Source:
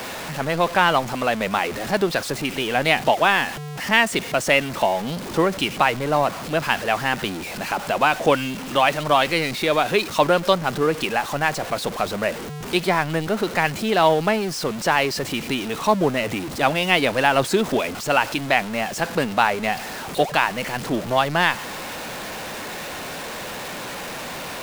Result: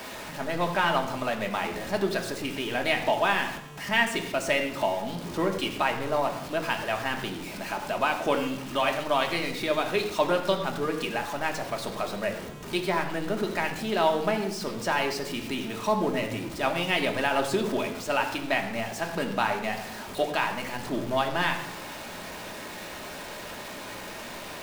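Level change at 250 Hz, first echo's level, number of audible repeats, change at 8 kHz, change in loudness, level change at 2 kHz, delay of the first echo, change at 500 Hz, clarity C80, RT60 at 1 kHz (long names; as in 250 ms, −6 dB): −6.0 dB, no echo audible, no echo audible, −8.0 dB, −7.0 dB, −7.0 dB, no echo audible, −6.0 dB, 10.5 dB, 0.75 s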